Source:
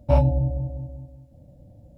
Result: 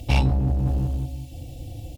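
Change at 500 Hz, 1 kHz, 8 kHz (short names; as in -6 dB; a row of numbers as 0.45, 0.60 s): -9.0 dB, -1.0 dB, n/a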